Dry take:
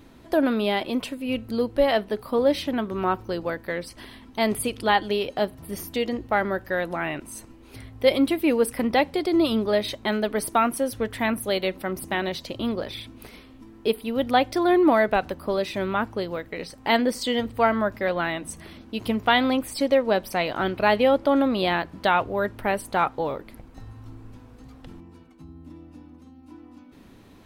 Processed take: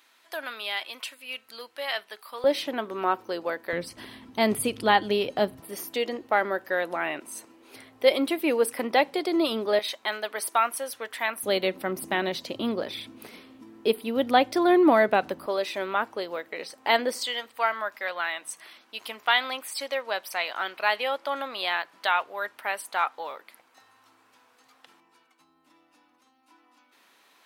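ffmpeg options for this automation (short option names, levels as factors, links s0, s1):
-af "asetnsamples=n=441:p=0,asendcmd='2.44 highpass f 400;3.73 highpass f 110;5.6 highpass f 370;9.79 highpass f 810;11.43 highpass f 200;15.46 highpass f 460;17.26 highpass f 1000',highpass=1400"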